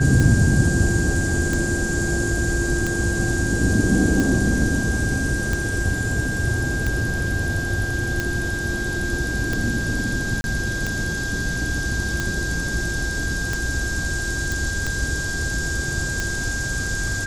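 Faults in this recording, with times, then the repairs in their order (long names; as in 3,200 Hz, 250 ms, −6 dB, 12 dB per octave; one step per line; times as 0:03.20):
scratch tick 45 rpm −10 dBFS
whistle 1,600 Hz −26 dBFS
0:10.41–0:10.44: drop-out 31 ms
0:14.52: click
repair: click removal
notch filter 1,600 Hz, Q 30
repair the gap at 0:10.41, 31 ms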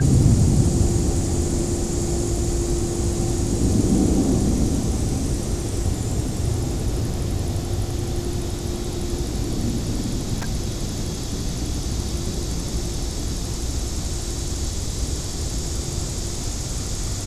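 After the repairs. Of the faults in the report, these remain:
none of them is left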